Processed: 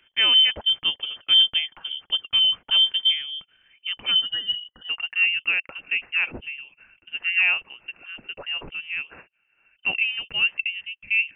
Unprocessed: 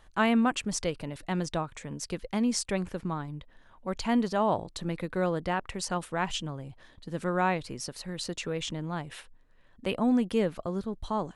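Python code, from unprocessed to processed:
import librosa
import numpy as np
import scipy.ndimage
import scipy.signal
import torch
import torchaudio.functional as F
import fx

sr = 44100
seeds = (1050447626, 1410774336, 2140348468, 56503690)

y = fx.filter_sweep_highpass(x, sr, from_hz=180.0, to_hz=610.0, start_s=3.45, end_s=5.17, q=6.1)
y = fx.spec_erase(y, sr, start_s=4.11, length_s=0.78, low_hz=420.0, high_hz=1300.0)
y = fx.freq_invert(y, sr, carrier_hz=3300)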